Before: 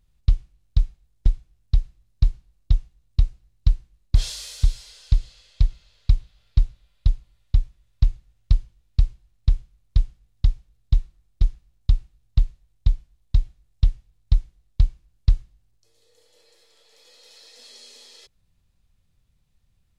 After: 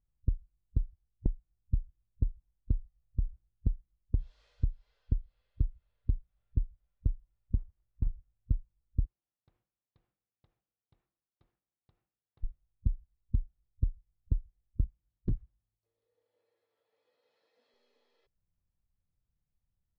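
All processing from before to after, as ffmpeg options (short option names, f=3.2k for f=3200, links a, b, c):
-filter_complex "[0:a]asettb=1/sr,asplit=3[a][b][c];[a]atrim=end=2.764[d];[b]atrim=start=2.76:end=3.25,asetpts=PTS-STARTPTS,afade=t=in:d=0.004:c=qsin,afade=t=out:st=0.486:d=0.004:c=qsin,aecho=1:1:1.6:0.75,atrim=end_sample=21609,acompressor=threshold=-20dB:ratio=3:attack=3.2:release=140:knee=1:detection=peak[e];[c]atrim=start=3.246[f];[d][e]acrossfade=d=0.004:c1=hsin:c2=qsin[g];[g][f]acrossfade=d=0.004:c1=qsin:c2=hsin,asettb=1/sr,asplit=3[h][i][j];[h]atrim=end=7.574[k];[i]atrim=start=7.57:end=8.07,asetpts=PTS-STARTPTS,afade=t=in:d=0.004:c=qsin,afade=t=out:st=0.496:d=0.004:c=qsin,acompressor=threshold=-20dB:ratio=6:attack=3.2:release=140:knee=1:detection=peak,acrusher=bits=4:mode=log:mix=0:aa=0.000001[l];[j]atrim=start=8.066[m];[k][l]acrossfade=d=0.004:c1=hsin:c2=qsin[n];[n][m]acrossfade=d=0.004:c1=qsin:c2=hsin,asettb=1/sr,asplit=3[o][p][q];[o]atrim=end=9.054[r];[p]atrim=start=9.05:end=12.44,asetpts=PTS-STARTPTS,afade=t=in:d=0.004:c=qsin,afade=t=out:st=3.386:d=0.004:c=qsin,highpass=320,acompressor=threshold=-45dB:ratio=5:attack=3.2:release=140:knee=1:detection=peak[s];[q]atrim=start=12.436[t];[r][s]acrossfade=d=0.004:c1=hsin:c2=qsin[u];[u][t]acrossfade=d=0.004:c1=qsin:c2=hsin,asettb=1/sr,asplit=3[v][w][x];[v]atrim=end=14.844[y];[w]atrim=start=14.84:end=17.74,asetpts=PTS-STARTPTS,afade=t=in:d=0.004:c=qsin,afade=t=out:st=2.896:d=0.004:c=qsin,highpass=49,aeval=exprs='0.112*(abs(mod(val(0)/0.112+3,4)-2)-1)':c=same[z];[x]atrim=start=17.736[aa];[y][z]acrossfade=d=0.004:c1=hsin:c2=qsin[ab];[ab][aa]acrossfade=d=0.004:c1=qsin:c2=hsin,afwtdn=0.0501,lowpass=1.5k,acompressor=threshold=-25dB:ratio=12"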